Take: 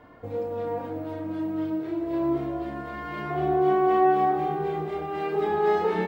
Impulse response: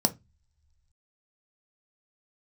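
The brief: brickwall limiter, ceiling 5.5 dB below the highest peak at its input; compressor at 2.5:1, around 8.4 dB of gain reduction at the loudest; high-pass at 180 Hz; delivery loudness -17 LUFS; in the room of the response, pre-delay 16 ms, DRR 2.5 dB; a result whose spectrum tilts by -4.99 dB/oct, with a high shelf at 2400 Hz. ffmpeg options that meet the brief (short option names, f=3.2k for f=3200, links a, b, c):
-filter_complex "[0:a]highpass=180,highshelf=f=2.4k:g=-7.5,acompressor=threshold=-31dB:ratio=2.5,alimiter=level_in=2.5dB:limit=-24dB:level=0:latency=1,volume=-2.5dB,asplit=2[a][b];[1:a]atrim=start_sample=2205,adelay=16[c];[b][c]afir=irnorm=-1:irlink=0,volume=-11.5dB[d];[a][d]amix=inputs=2:normalize=0,volume=13dB"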